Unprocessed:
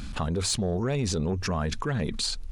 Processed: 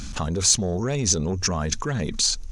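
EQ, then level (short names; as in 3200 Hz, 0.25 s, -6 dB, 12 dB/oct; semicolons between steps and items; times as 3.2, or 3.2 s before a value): bell 6200 Hz +14.5 dB 0.53 oct; +2.0 dB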